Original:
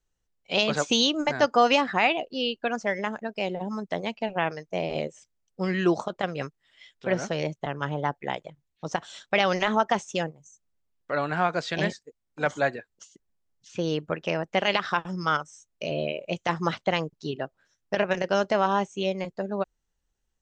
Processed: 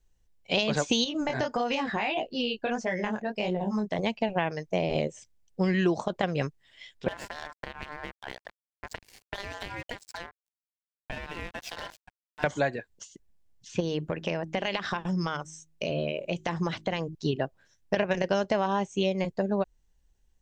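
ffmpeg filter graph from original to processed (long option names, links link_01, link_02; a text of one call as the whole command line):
ffmpeg -i in.wav -filter_complex "[0:a]asettb=1/sr,asplit=3[link_01][link_02][link_03];[link_01]atrim=end=1.044[link_04];[link_02]atrim=start=1.04:end=3.99,asetpts=PTS-STARTPTS,afade=type=in:duration=0.004:curve=qsin,afade=type=out:start_time=2.946:duration=0.004:curve=qsin,flanger=delay=16.5:depth=7.6:speed=1.6,acompressor=threshold=-27dB:ratio=6:attack=3.2:release=140:knee=1:detection=peak[link_05];[link_03]atrim=start=3.986[link_06];[link_04][link_05]acrossfade=duration=0.004:curve1=hsin:curve2=qsin[link_07];[link_07][link_06]acrossfade=duration=0.004:curve1=qsin:curve2=hsin,asettb=1/sr,asplit=3[link_08][link_09][link_10];[link_08]atrim=end=7.084[link_11];[link_09]atrim=start=7.08:end=12.44,asetpts=PTS-STARTPTS,afade=type=in:duration=0.004:curve=qsin,afade=type=out:start_time=5.356:duration=0.004:curve=qsin,acompressor=threshold=-31dB:ratio=8:attack=3.2:release=140:knee=1:detection=peak,aeval=exprs='sgn(val(0))*max(abs(val(0))-0.00794,0)':channel_layout=same,aeval=exprs='val(0)*sin(2*PI*1200*n/s)':channel_layout=same[link_12];[link_10]atrim=start=12.436[link_13];[link_11][link_12]acrossfade=duration=0.004:curve1=hsin:curve2=qsin[link_14];[link_14][link_13]acrossfade=duration=0.004:curve1=qsin:curve2=hsin,asettb=1/sr,asplit=3[link_15][link_16][link_17];[link_15]atrim=end=13.804[link_18];[link_16]atrim=start=13.8:end=17.15,asetpts=PTS-STARTPTS,afade=type=in:duration=0.004:curve=qsin,afade=type=out:start_time=3.346:duration=0.004:curve=qsin,acompressor=threshold=-30dB:ratio=3:attack=3.2:release=140:knee=1:detection=peak,bandreject=frequency=52.79:width_type=h:width=4,bandreject=frequency=105.58:width_type=h:width=4,bandreject=frequency=158.37:width_type=h:width=4,bandreject=frequency=211.16:width_type=h:width=4,bandreject=frequency=263.95:width_type=h:width=4,bandreject=frequency=316.74:width_type=h:width=4,bandreject=frequency=369.53:width_type=h:width=4[link_19];[link_17]atrim=start=17.146[link_20];[link_18][link_19]acrossfade=duration=0.004:curve1=hsin:curve2=qsin[link_21];[link_21][link_20]acrossfade=duration=0.004:curve1=qsin:curve2=hsin,equalizer=frequency=1300:width_type=o:width=0.22:gain=-8,acompressor=threshold=-27dB:ratio=4,lowshelf=frequency=120:gain=9.5,volume=3.5dB" out.wav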